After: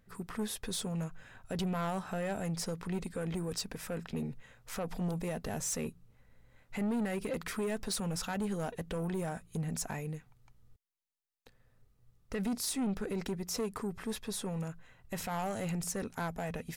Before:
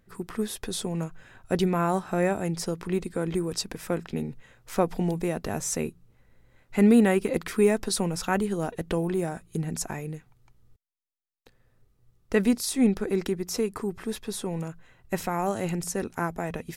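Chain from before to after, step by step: peak limiter -18 dBFS, peak gain reduction 9.5 dB; peaking EQ 350 Hz -8.5 dB 0.28 oct; saturation -26.5 dBFS, distortion -12 dB; trim -2.5 dB

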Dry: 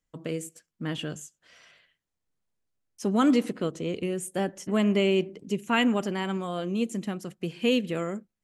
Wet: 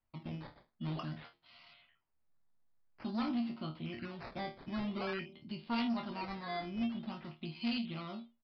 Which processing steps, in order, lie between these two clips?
in parallel at +2.5 dB: compression, threshold -37 dBFS, peak gain reduction 18 dB; on the sum: static phaser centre 1.7 kHz, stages 6; chord resonator D#2 fifth, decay 0.25 s; decimation with a swept rate 11×, swing 100% 0.49 Hz; saturation -32 dBFS, distortion -11 dB; resampled via 11.025 kHz; trim +2 dB

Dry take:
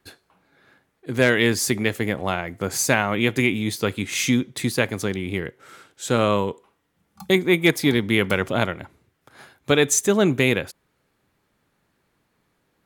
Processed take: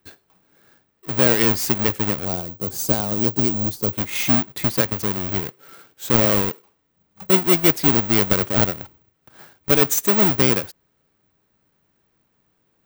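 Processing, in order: square wave that keeps the level; 2.25–3.93 s: peaking EQ 2 kHz -13.5 dB 1.9 oct; careless resampling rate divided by 2×, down filtered, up zero stuff; trim -5.5 dB

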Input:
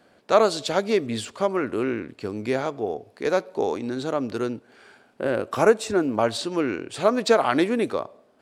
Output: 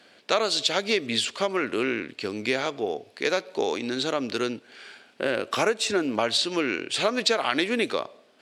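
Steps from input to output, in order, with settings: frequency weighting D; compression 4:1, threshold -20 dBFS, peak gain reduction 8.5 dB

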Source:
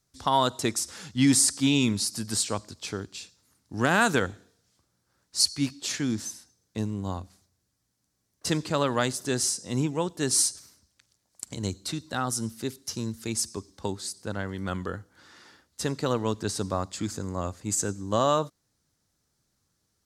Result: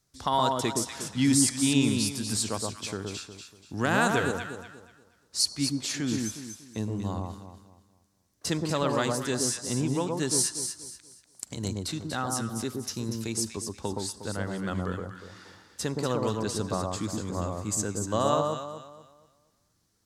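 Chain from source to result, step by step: in parallel at -2 dB: compression, threshold -36 dBFS, peak gain reduction 18 dB; on the sum: echo whose repeats swap between lows and highs 120 ms, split 1.2 kHz, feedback 56%, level -2 dB; trim -4 dB

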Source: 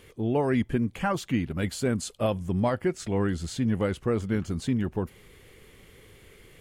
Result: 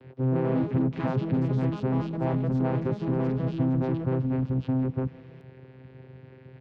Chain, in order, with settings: overload inside the chain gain 31 dB; vocoder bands 8, saw 130 Hz; distance through air 340 m; ever faster or slower copies 165 ms, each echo +4 st, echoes 2, each echo -6 dB; on a send: delay 158 ms -21.5 dB; on the sum: trim +9 dB

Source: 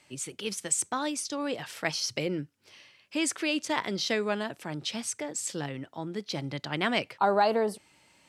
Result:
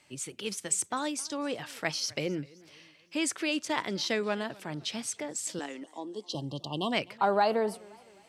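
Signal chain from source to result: 5.83–6.93 s: spectral selection erased 1.2–2.7 kHz; 5.59–6.35 s: elliptic band-pass 270–9900 Hz; modulated delay 259 ms, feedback 46%, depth 147 cents, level -23.5 dB; trim -1.5 dB

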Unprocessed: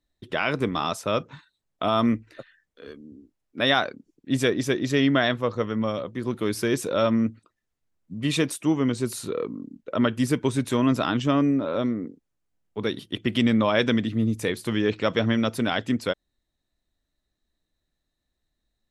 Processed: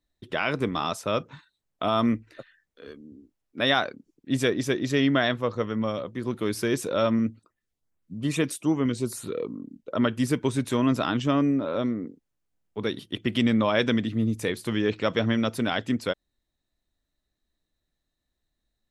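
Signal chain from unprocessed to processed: 7.19–9.96 s: LFO notch saw up 2.4 Hz 590–6800 Hz; trim -1.5 dB

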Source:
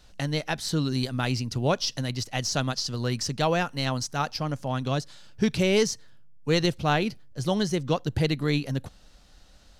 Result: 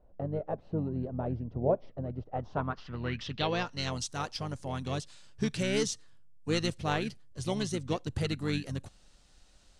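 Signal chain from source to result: harmony voices -7 st -7 dB; low-pass sweep 620 Hz -> 8.9 kHz, 2.23–4.05 s; trim -8 dB

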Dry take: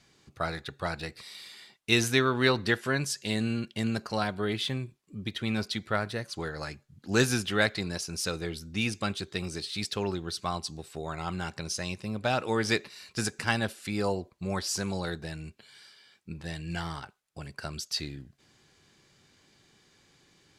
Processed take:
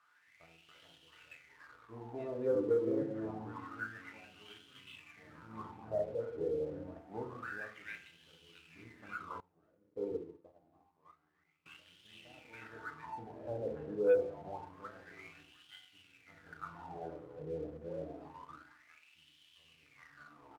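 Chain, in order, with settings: distance through air 300 m; bands offset in time lows, highs 280 ms, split 1 kHz; ever faster or slower copies 259 ms, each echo -3 st, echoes 3, each echo -6 dB; tilt EQ -4 dB/octave; feedback comb 390 Hz, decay 0.68 s, mix 60%; added noise white -54 dBFS; doubling 24 ms -12 dB; FDN reverb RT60 0.81 s, low-frequency decay 1.3×, high-frequency decay 0.65×, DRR 1 dB; wah-wah 0.27 Hz 460–3100 Hz, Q 8.8; waveshaping leveller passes 1; 9.40–11.66 s: upward expansion 2.5:1, over -51 dBFS; trim +3.5 dB

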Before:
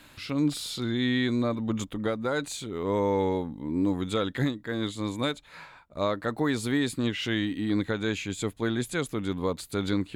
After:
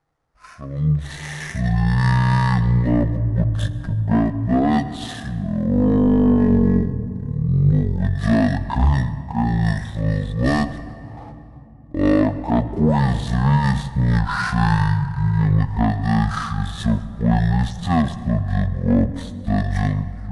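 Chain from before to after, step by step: median filter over 9 samples; spectral noise reduction 8 dB; gate -48 dBFS, range -12 dB; level rider gain up to 14 dB; saturation -8.5 dBFS, distortion -16 dB; simulated room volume 2400 m³, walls mixed, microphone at 0.61 m; speed mistake 15 ips tape played at 7.5 ips

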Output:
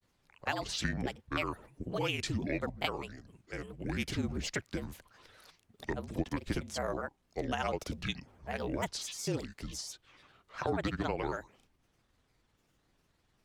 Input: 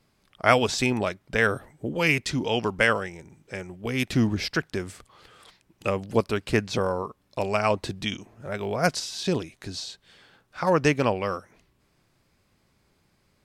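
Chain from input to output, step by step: compression 6:1, threshold -23 dBFS, peak gain reduction 10.5 dB; frequency shift -38 Hz; granulator, spray 38 ms, pitch spread up and down by 7 st; trim -5 dB

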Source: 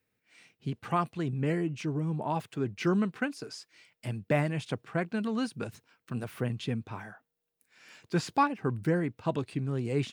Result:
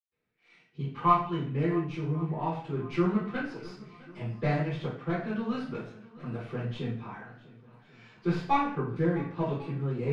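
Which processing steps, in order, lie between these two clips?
tracing distortion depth 0.099 ms; 0.81–1.28 s: small resonant body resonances 1/3 kHz, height 14 dB -> 17 dB, ringing for 45 ms; shuffle delay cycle 1093 ms, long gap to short 1.5:1, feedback 40%, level -20.5 dB; reverberation RT60 0.50 s, pre-delay 113 ms; trim +1.5 dB

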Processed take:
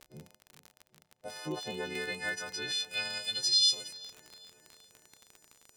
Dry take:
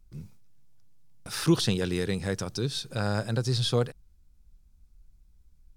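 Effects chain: partials quantised in pitch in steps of 3 st; peaking EQ 1.2 kHz -14.5 dB 0.55 oct; in parallel at 0 dB: compression, threshold -36 dBFS, peak gain reduction 17.5 dB; on the sum: peak limiter -17 dBFS, peak gain reduction 8.5 dB; band-pass sweep 620 Hz -> 6.9 kHz, 1.30–4.16 s; crackle 44 per s -41 dBFS; on a send: filtered feedback delay 393 ms, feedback 70%, low-pass 3.1 kHz, level -17 dB; 1.95–2.72 s: on the sum: three bands compressed up and down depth 70%; trim +5.5 dB

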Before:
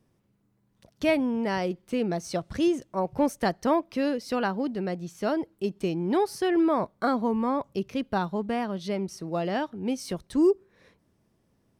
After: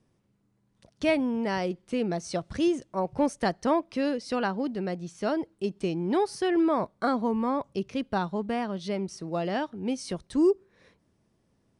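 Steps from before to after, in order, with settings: elliptic low-pass 10 kHz, stop band 40 dB

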